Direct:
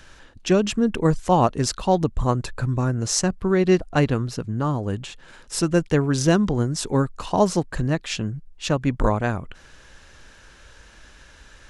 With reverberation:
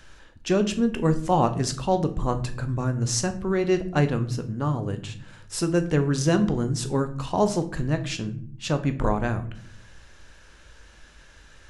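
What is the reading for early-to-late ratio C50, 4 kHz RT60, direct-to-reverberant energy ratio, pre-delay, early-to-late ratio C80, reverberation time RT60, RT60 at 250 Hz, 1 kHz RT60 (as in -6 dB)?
14.0 dB, 0.35 s, 8.0 dB, 12 ms, 17.5 dB, 0.55 s, 1.0 s, 0.45 s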